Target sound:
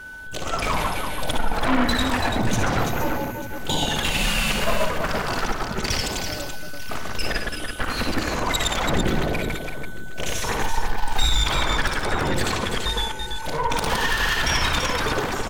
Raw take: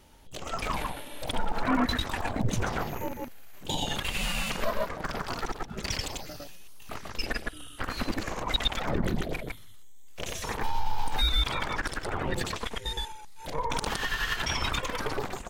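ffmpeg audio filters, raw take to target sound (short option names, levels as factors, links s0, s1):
-af "aeval=exprs='0.237*sin(PI/2*2.51*val(0)/0.237)':c=same,aeval=exprs='val(0)+0.0224*sin(2*PI*1500*n/s)':c=same,aecho=1:1:58|71|335|892:0.376|0.282|0.501|0.15,volume=0.668"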